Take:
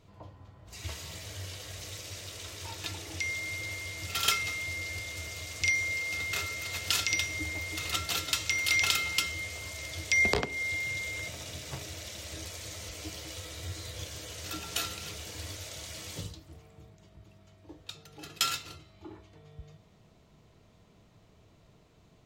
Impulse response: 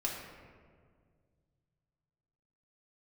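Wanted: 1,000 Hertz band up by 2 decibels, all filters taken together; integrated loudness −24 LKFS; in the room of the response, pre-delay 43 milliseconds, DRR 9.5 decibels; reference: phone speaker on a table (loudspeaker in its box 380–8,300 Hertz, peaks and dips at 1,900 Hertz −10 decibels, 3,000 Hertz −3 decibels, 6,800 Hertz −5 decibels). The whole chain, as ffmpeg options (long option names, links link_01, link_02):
-filter_complex "[0:a]equalizer=frequency=1000:width_type=o:gain=4.5,asplit=2[link_01][link_02];[1:a]atrim=start_sample=2205,adelay=43[link_03];[link_02][link_03]afir=irnorm=-1:irlink=0,volume=-13dB[link_04];[link_01][link_04]amix=inputs=2:normalize=0,highpass=frequency=380:width=0.5412,highpass=frequency=380:width=1.3066,equalizer=frequency=1900:width_type=q:width=4:gain=-10,equalizer=frequency=3000:width_type=q:width=4:gain=-3,equalizer=frequency=6800:width_type=q:width=4:gain=-5,lowpass=frequency=8300:width=0.5412,lowpass=frequency=8300:width=1.3066,volume=11dB"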